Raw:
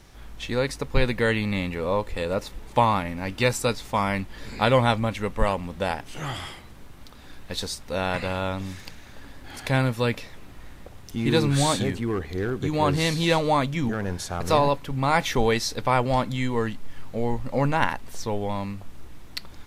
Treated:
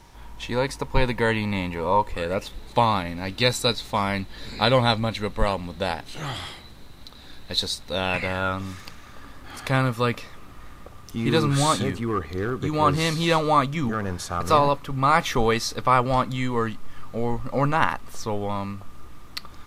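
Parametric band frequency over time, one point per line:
parametric band +13.5 dB 0.21 octaves
0:02.10 940 Hz
0:02.55 4,000 Hz
0:07.90 4,000 Hz
0:08.55 1,200 Hz

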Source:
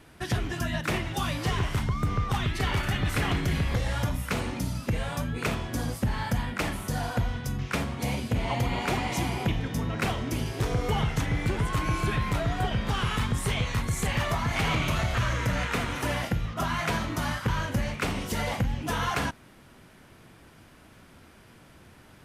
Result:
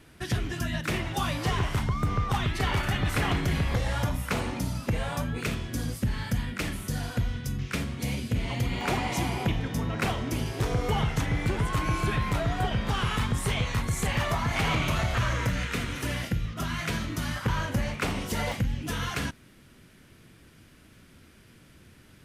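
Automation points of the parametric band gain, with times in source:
parametric band 830 Hz 1.3 octaves
−5 dB
from 0:00.99 +2 dB
from 0:05.41 −10 dB
from 0:08.81 +0.5 dB
from 0:15.49 −10 dB
from 0:17.36 0 dB
from 0:18.52 −10 dB

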